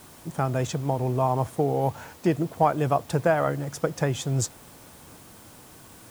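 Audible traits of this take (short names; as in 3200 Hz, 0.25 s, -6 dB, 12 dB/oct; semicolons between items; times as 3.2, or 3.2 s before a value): a quantiser's noise floor 8-bit, dither triangular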